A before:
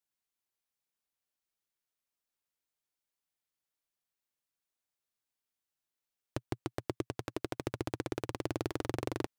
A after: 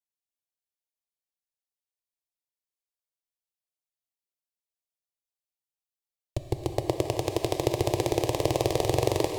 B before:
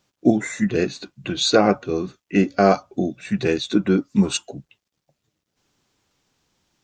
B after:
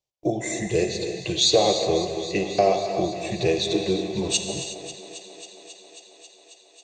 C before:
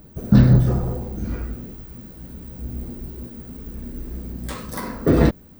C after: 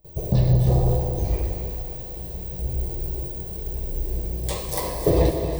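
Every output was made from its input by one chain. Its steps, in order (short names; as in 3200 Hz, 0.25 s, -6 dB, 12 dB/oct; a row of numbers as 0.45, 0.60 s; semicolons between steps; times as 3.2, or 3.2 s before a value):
gate with hold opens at -36 dBFS; compressor 4:1, threshold -17 dBFS; fixed phaser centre 590 Hz, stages 4; thinning echo 0.271 s, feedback 81%, high-pass 210 Hz, level -14 dB; non-linear reverb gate 0.39 s flat, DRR 5 dB; normalise peaks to -6 dBFS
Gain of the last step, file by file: +14.0, +4.0, +6.0 dB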